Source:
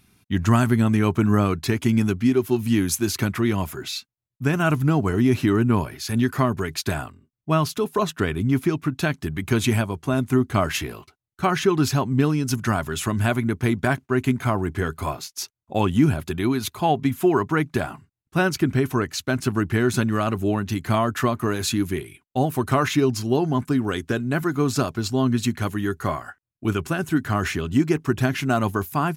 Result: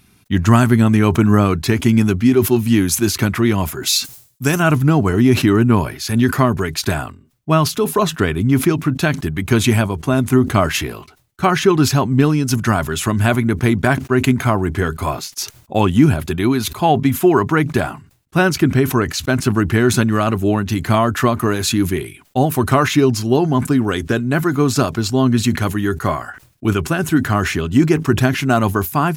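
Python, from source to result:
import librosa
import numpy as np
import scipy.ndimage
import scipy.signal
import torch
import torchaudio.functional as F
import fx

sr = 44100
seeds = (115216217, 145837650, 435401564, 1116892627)

y = fx.bass_treble(x, sr, bass_db=-3, treble_db=13, at=(3.83, 4.6))
y = fx.sustainer(y, sr, db_per_s=130.0)
y = y * 10.0 ** (6.0 / 20.0)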